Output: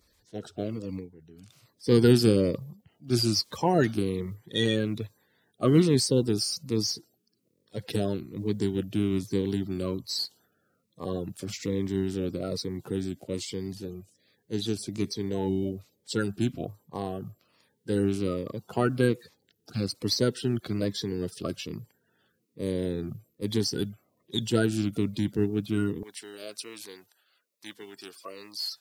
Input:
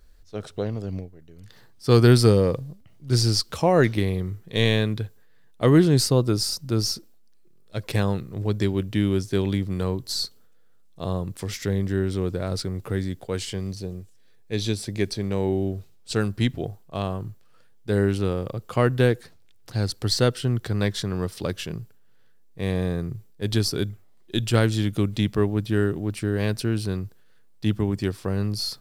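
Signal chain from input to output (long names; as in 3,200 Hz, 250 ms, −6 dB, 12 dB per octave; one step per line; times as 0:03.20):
spectral magnitudes quantised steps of 30 dB
high-pass filter 110 Hz 12 dB per octave, from 0:26.03 860 Hz
phaser whose notches keep moving one way falling 1.2 Hz
level −2.5 dB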